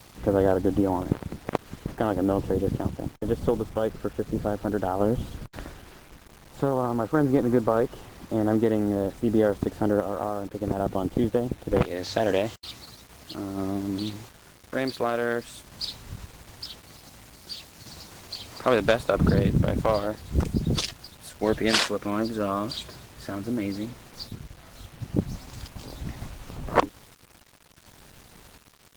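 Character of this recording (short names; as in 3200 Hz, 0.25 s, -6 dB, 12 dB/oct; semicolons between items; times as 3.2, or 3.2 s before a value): random-step tremolo 1.4 Hz, depth 55%; a quantiser's noise floor 8-bit, dither none; Opus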